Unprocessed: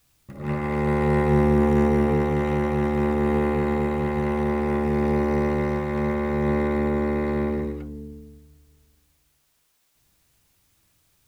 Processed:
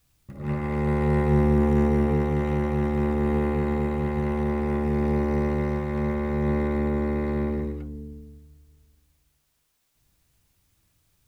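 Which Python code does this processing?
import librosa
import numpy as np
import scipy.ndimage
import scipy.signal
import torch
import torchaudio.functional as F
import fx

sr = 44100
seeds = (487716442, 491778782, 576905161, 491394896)

y = fx.low_shelf(x, sr, hz=180.0, db=7.5)
y = y * 10.0 ** (-4.5 / 20.0)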